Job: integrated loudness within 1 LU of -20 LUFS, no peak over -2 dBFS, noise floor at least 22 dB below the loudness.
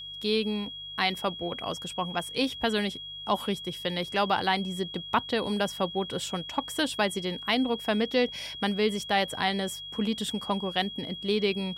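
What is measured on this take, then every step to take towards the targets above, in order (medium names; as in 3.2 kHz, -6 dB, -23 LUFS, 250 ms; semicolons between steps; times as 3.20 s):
hum 50 Hz; highest harmonic 150 Hz; hum level -56 dBFS; steady tone 3.3 kHz; tone level -38 dBFS; loudness -29.0 LUFS; peak level -11.5 dBFS; loudness target -20.0 LUFS
-> de-hum 50 Hz, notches 3; band-stop 3.3 kHz, Q 30; trim +9 dB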